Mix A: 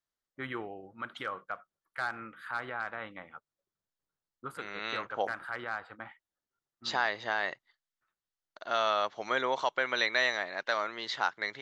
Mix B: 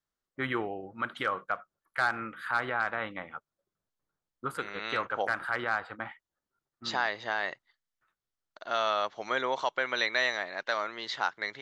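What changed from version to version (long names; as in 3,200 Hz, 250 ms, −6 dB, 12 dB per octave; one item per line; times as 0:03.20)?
first voice +6.5 dB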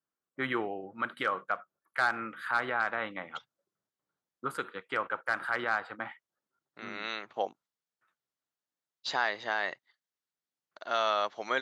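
second voice: entry +2.20 s
master: add high-pass filter 150 Hz 12 dB per octave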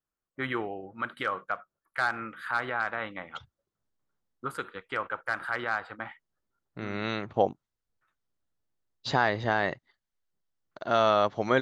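second voice: remove high-pass filter 1,400 Hz 6 dB per octave
master: remove high-pass filter 150 Hz 12 dB per octave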